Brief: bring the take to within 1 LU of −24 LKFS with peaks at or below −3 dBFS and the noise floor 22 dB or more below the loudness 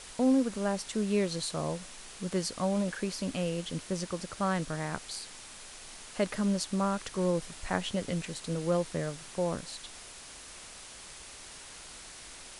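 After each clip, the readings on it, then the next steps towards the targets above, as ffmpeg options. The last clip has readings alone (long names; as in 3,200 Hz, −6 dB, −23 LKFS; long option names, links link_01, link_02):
background noise floor −48 dBFS; target noise floor −55 dBFS; integrated loudness −32.5 LKFS; sample peak −14.5 dBFS; target loudness −24.0 LKFS
→ -af "afftdn=noise_reduction=7:noise_floor=-48"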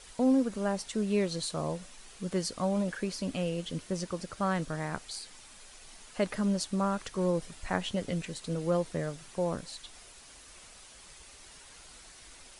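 background noise floor −53 dBFS; target noise floor −55 dBFS
→ -af "afftdn=noise_reduction=6:noise_floor=-53"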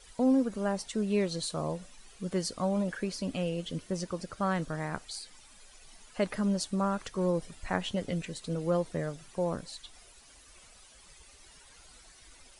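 background noise floor −56 dBFS; integrated loudness −32.5 LKFS; sample peak −14.5 dBFS; target loudness −24.0 LKFS
→ -af "volume=8.5dB"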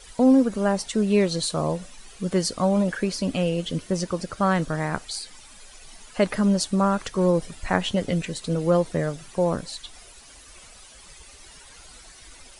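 integrated loudness −24.0 LKFS; sample peak −6.0 dBFS; background noise floor −48 dBFS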